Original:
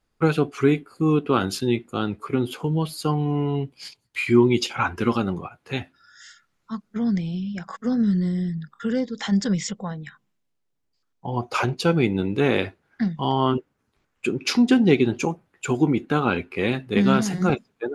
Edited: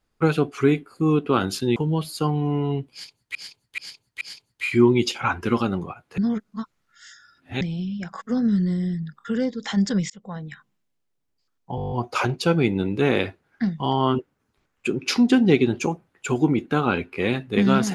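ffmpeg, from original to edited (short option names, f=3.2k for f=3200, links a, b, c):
-filter_complex "[0:a]asplit=16[a][b][c][d][e][f][g][h][i][j][k][l][m][n][o][p];[a]atrim=end=1.762[q];[b]atrim=start=2.598:end=4.192[r];[c]atrim=start=3.758:end=4.192[s];[d]atrim=start=3.758:end=4.192[t];[e]atrim=start=3.758:end=5.732[u];[f]atrim=start=5.728:end=7.162,asetpts=PTS-STARTPTS,areverse[v];[g]atrim=start=7.158:end=9.65,asetpts=PTS-STARTPTS,afade=t=out:st=2.488:d=0.004:c=hsin[w];[h]atrim=start=9.65:end=11.332,asetpts=PTS-STARTPTS,afade=t=in:d=0.33[x];[i]atrim=start=11.308:end=11.332[y];[j]atrim=start=11.308:end=11.332[z];[k]atrim=start=11.308:end=11.332[aa];[l]atrim=start=11.308:end=11.332[ab];[m]atrim=start=11.308:end=11.332[ac];[n]atrim=start=11.308:end=11.332[ad];[o]atrim=start=11.308:end=11.332[ae];[p]atrim=start=11.308[af];[q][r]acrossfade=d=0.004:c1=hsin:c2=hsin[ag];[ag][s]acrossfade=d=0.004:c1=hsin:c2=hsin[ah];[ah][t]acrossfade=d=0.004:c1=hsin:c2=hsin[ai];[ai][u]acrossfade=d=0.004:c1=hsin:c2=hsin[aj];[aj][v]acrossfade=d=0.004:c1=hsin:c2=hsin[ak];[w][x]concat=n=2:v=0:a=1[al];[ak][al]acrossfade=d=0.004:c1=hsin:c2=hsin[am];[am][y]acrossfade=d=0.004:c1=hsin:c2=hsin[an];[an][z]acrossfade=d=0.004:c1=hsin:c2=hsin[ao];[ao][aa]acrossfade=d=0.004:c1=hsin:c2=hsin[ap];[ap][ab]acrossfade=d=0.004:c1=hsin:c2=hsin[aq];[aq][ac]acrossfade=d=0.004:c1=hsin:c2=hsin[ar];[ar][ad]acrossfade=d=0.004:c1=hsin:c2=hsin[as];[as][ae]acrossfade=d=0.004:c1=hsin:c2=hsin[at];[at][af]acrossfade=d=0.004:c1=hsin:c2=hsin"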